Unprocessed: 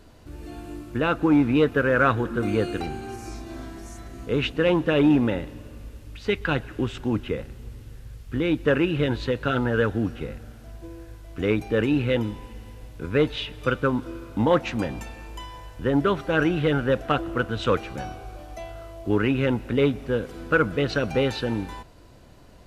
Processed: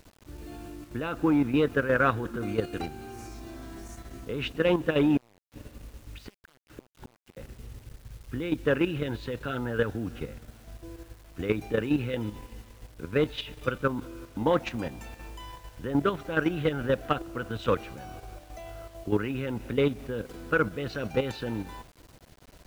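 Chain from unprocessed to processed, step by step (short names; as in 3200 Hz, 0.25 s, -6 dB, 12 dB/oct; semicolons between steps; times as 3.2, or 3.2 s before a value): 5.17–7.37 flipped gate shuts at -23 dBFS, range -32 dB; level quantiser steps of 10 dB; bit-crush 9-bit; gain -1.5 dB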